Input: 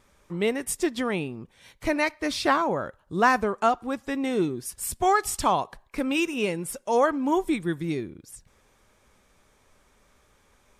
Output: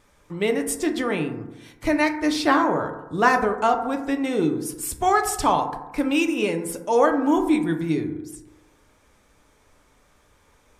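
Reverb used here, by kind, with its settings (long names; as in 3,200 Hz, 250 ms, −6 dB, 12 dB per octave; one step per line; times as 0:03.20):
feedback delay network reverb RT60 1 s, low-frequency decay 1×, high-frequency decay 0.3×, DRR 4.5 dB
level +1.5 dB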